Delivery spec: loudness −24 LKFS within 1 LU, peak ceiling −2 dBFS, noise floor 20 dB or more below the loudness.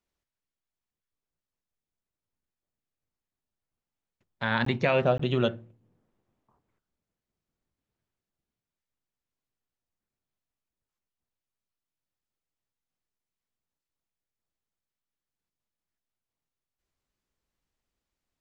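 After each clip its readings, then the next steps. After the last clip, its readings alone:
number of dropouts 2; longest dropout 14 ms; integrated loudness −26.5 LKFS; sample peak −10.5 dBFS; target loudness −24.0 LKFS
→ repair the gap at 0:04.65/0:05.18, 14 ms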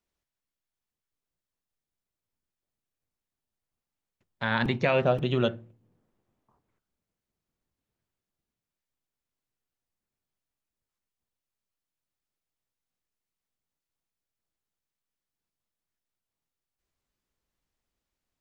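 number of dropouts 0; integrated loudness −26.5 LKFS; sample peak −10.5 dBFS; target loudness −24.0 LKFS
→ level +2.5 dB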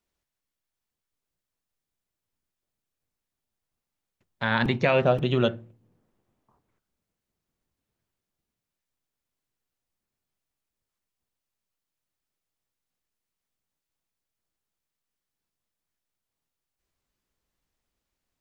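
integrated loudness −24.0 LKFS; sample peak −8.0 dBFS; background noise floor −87 dBFS

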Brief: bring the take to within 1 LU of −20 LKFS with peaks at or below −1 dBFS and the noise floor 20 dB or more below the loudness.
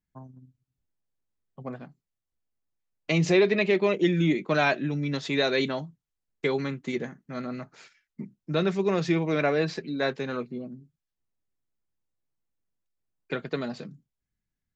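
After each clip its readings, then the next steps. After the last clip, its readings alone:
integrated loudness −27.0 LKFS; sample peak −11.0 dBFS; target loudness −20.0 LKFS
→ level +7 dB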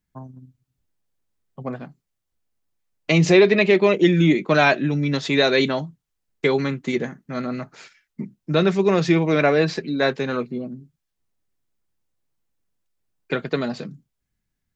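integrated loudness −20.0 LKFS; sample peak −4.0 dBFS; background noise floor −79 dBFS

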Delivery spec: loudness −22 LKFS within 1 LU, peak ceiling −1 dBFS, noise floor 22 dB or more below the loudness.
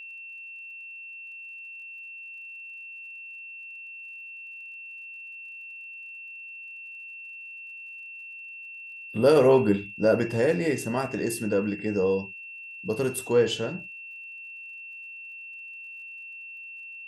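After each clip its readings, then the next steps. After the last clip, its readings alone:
crackle rate 48 per second; interfering tone 2,700 Hz; level of the tone −39 dBFS; integrated loudness −30.0 LKFS; sample peak −8.0 dBFS; target loudness −22.0 LKFS
→ click removal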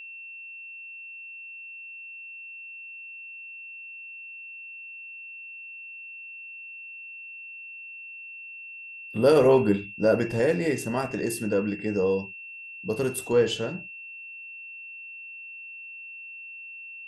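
crackle rate 0 per second; interfering tone 2,700 Hz; level of the tone −39 dBFS
→ notch filter 2,700 Hz, Q 30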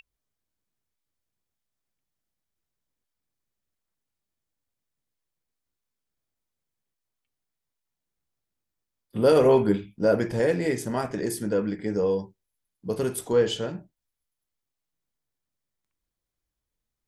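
interfering tone none found; integrated loudness −24.5 LKFS; sample peak −8.5 dBFS; target loudness −22.0 LKFS
→ level +2.5 dB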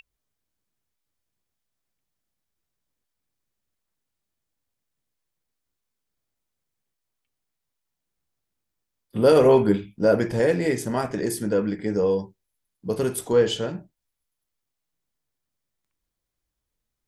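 integrated loudness −22.0 LKFS; sample peak −6.0 dBFS; background noise floor −82 dBFS

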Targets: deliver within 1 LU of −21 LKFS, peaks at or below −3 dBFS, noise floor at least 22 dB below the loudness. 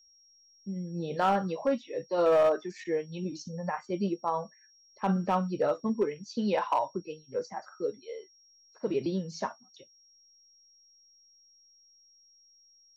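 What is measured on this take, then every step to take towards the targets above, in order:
share of clipped samples 0.3%; peaks flattened at −18.5 dBFS; interfering tone 5,600 Hz; level of the tone −59 dBFS; integrated loudness −31.0 LKFS; sample peak −18.5 dBFS; target loudness −21.0 LKFS
→ clipped peaks rebuilt −18.5 dBFS
notch filter 5,600 Hz, Q 30
level +10 dB

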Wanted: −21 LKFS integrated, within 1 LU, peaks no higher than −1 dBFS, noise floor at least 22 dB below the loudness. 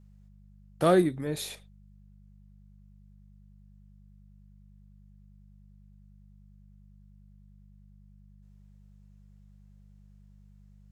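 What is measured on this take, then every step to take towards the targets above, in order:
mains hum 50 Hz; hum harmonics up to 200 Hz; level of the hum −53 dBFS; integrated loudness −27.0 LKFS; sample peak −11.0 dBFS; target loudness −21.0 LKFS
→ hum removal 50 Hz, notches 4
level +6 dB

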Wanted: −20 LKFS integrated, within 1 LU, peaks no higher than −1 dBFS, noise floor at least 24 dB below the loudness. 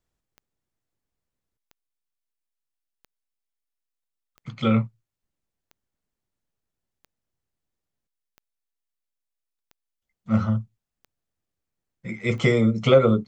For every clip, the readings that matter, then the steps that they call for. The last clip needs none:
number of clicks 10; integrated loudness −22.0 LKFS; sample peak −4.0 dBFS; target loudness −20.0 LKFS
→ click removal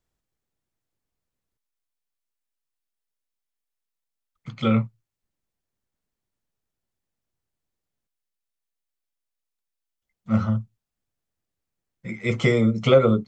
number of clicks 0; integrated loudness −22.0 LKFS; sample peak −4.0 dBFS; target loudness −20.0 LKFS
→ level +2 dB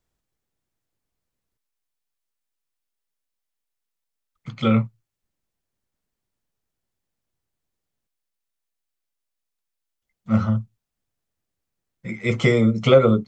integrated loudness −20.0 LKFS; sample peak −2.0 dBFS; background noise floor −83 dBFS

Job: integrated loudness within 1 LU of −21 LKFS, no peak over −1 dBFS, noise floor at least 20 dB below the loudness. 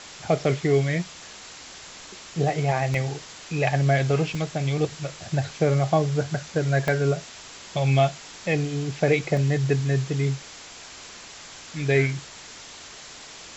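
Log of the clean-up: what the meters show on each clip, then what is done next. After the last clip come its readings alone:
number of dropouts 4; longest dropout 1.7 ms; background noise floor −43 dBFS; target noise floor −45 dBFS; integrated loudness −24.5 LKFS; sample peak −7.5 dBFS; target loudness −21.0 LKFS
→ repair the gap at 0:02.94/0:04.35/0:06.88/0:09.37, 1.7 ms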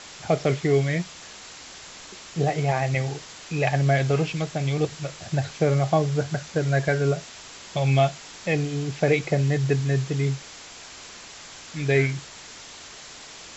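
number of dropouts 0; background noise floor −43 dBFS; target noise floor −45 dBFS
→ noise reduction from a noise print 6 dB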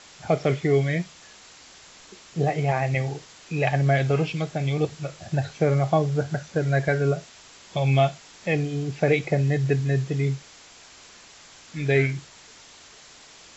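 background noise floor −49 dBFS; integrated loudness −24.5 LKFS; sample peak −8.0 dBFS; target loudness −21.0 LKFS
→ level +3.5 dB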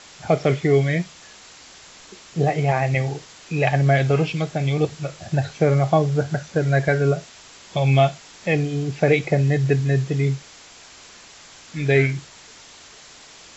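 integrated loudness −21.0 LKFS; sample peak −4.5 dBFS; background noise floor −46 dBFS

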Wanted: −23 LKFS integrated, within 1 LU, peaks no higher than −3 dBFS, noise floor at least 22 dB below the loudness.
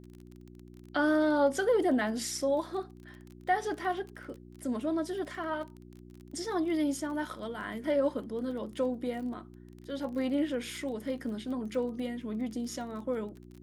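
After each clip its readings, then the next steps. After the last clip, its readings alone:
crackle rate 25 per second; mains hum 60 Hz; hum harmonics up to 360 Hz; level of the hum −49 dBFS; integrated loudness −32.5 LKFS; sample peak −17.0 dBFS; target loudness −23.0 LKFS
→ click removal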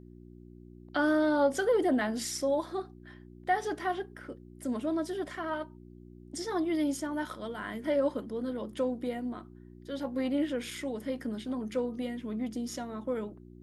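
crackle rate 0 per second; mains hum 60 Hz; hum harmonics up to 360 Hz; level of the hum −49 dBFS
→ hum removal 60 Hz, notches 6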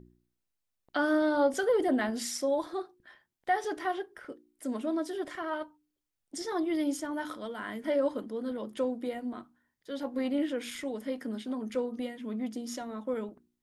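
mains hum none found; integrated loudness −32.5 LKFS; sample peak −17.0 dBFS; target loudness −23.0 LKFS
→ level +9.5 dB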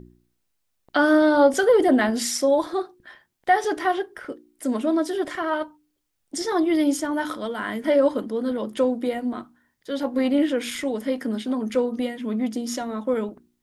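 integrated loudness −23.0 LKFS; sample peak −7.5 dBFS; background noise floor −74 dBFS

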